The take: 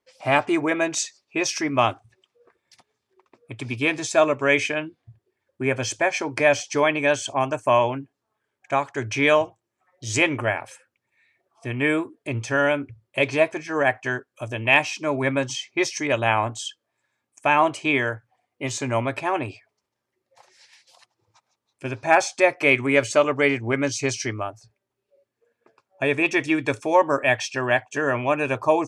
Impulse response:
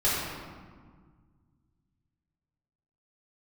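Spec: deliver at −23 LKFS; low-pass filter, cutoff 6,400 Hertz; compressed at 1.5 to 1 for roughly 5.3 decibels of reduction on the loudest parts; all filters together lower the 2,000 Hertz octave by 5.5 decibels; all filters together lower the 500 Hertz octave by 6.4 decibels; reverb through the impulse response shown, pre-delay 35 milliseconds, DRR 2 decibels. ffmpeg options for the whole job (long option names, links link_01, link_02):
-filter_complex "[0:a]lowpass=6400,equalizer=frequency=500:width_type=o:gain=-8,equalizer=frequency=2000:width_type=o:gain=-6.5,acompressor=threshold=-32dB:ratio=1.5,asplit=2[link_01][link_02];[1:a]atrim=start_sample=2205,adelay=35[link_03];[link_02][link_03]afir=irnorm=-1:irlink=0,volume=-15dB[link_04];[link_01][link_04]amix=inputs=2:normalize=0,volume=6dB"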